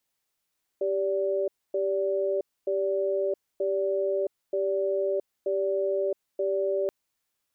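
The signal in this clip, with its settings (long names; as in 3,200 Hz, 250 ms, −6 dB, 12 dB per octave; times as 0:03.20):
tone pair in a cadence 392 Hz, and 579 Hz, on 0.67 s, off 0.26 s, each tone −26.5 dBFS 6.08 s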